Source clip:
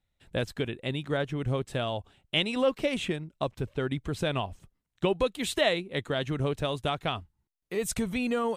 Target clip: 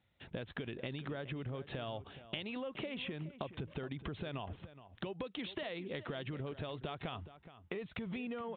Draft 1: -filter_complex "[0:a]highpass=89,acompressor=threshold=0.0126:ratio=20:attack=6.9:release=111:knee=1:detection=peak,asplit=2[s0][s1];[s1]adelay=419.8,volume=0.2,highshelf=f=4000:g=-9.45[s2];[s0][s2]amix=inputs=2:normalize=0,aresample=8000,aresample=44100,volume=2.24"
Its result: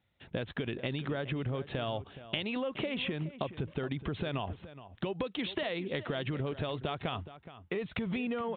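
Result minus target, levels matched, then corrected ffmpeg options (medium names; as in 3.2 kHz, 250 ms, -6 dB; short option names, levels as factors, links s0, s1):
compression: peak gain reduction -7 dB
-filter_complex "[0:a]highpass=89,acompressor=threshold=0.00531:ratio=20:attack=6.9:release=111:knee=1:detection=peak,asplit=2[s0][s1];[s1]adelay=419.8,volume=0.2,highshelf=f=4000:g=-9.45[s2];[s0][s2]amix=inputs=2:normalize=0,aresample=8000,aresample=44100,volume=2.24"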